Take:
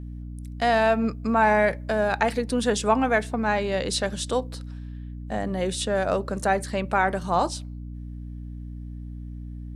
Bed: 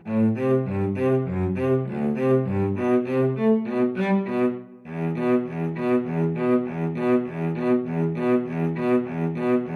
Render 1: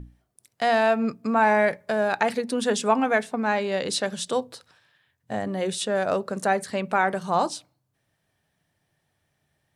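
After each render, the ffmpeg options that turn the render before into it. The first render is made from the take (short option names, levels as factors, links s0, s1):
-af "bandreject=f=60:t=h:w=6,bandreject=f=120:t=h:w=6,bandreject=f=180:t=h:w=6,bandreject=f=240:t=h:w=6,bandreject=f=300:t=h:w=6"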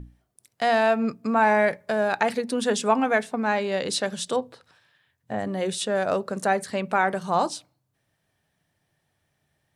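-filter_complex "[0:a]asettb=1/sr,asplit=3[s0][s1][s2];[s0]atrim=end=4.364[s3];[s1]atrim=start=4.36:end=5.39,asetpts=PTS-STARTPTS,afade=t=in:d=0.004:c=qsin,afade=t=out:st=1.026:d=0.004:c=qsin,acrossover=split=2900[s4][s5];[s5]acompressor=threshold=0.00112:ratio=4:attack=1:release=60[s6];[s4][s6]amix=inputs=2:normalize=0[s7];[s2]atrim=start=5.386[s8];[s3][s7]acrossfade=d=0.004:c1=hsin:c2=qsin[s9];[s9][s8]acrossfade=d=0.004:c1=qsin:c2=hsin"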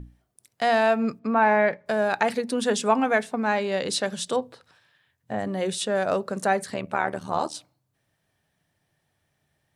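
-filter_complex "[0:a]asettb=1/sr,asplit=3[s0][s1][s2];[s0]atrim=end=1.194[s3];[s1]atrim=start=1.19:end=1.86,asetpts=PTS-STARTPTS,afade=t=in:d=0.004:c=qsin,afade=t=out:st=0.666:d=0.004:c=qsin,highpass=130,lowpass=3400[s4];[s2]atrim=start=1.856[s5];[s3][s4]acrossfade=d=0.004:c1=hsin:c2=qsin[s6];[s6][s5]acrossfade=d=0.004:c1=qsin:c2=hsin,asettb=1/sr,asplit=3[s7][s8][s9];[s7]atrim=end=6.744[s10];[s8]atrim=start=6.74:end=7.55,asetpts=PTS-STARTPTS,afade=t=in:d=0.004:c=qsin,afade=t=out:st=0.806:d=0.004:c=qsin,tremolo=f=76:d=0.857[s11];[s9]atrim=start=7.546[s12];[s10][s11]acrossfade=d=0.004:c1=hsin:c2=qsin[s13];[s13][s12]acrossfade=d=0.004:c1=qsin:c2=hsin"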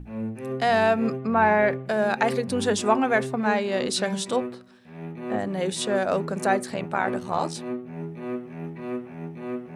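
-filter_complex "[1:a]volume=0.299[s0];[0:a][s0]amix=inputs=2:normalize=0"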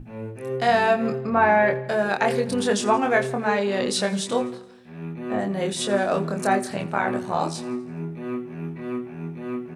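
-filter_complex "[0:a]asplit=2[s0][s1];[s1]adelay=25,volume=0.631[s2];[s0][s2]amix=inputs=2:normalize=0,aecho=1:1:84|168|252|336|420:0.112|0.064|0.0365|0.0208|0.0118"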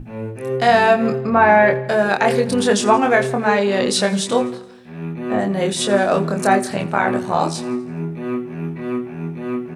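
-af "volume=2,alimiter=limit=0.794:level=0:latency=1"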